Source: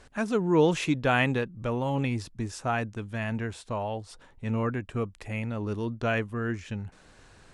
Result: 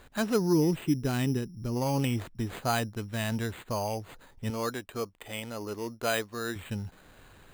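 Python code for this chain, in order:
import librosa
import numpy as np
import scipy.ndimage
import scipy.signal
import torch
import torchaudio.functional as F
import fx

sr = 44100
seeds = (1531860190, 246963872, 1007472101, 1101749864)

y = fx.spec_box(x, sr, start_s=0.53, length_s=1.23, low_hz=450.0, high_hz=10000.0, gain_db=-12)
y = fx.bass_treble(y, sr, bass_db=-13, treble_db=-4, at=(4.5, 6.56))
y = np.repeat(y[::8], 8)[:len(y)]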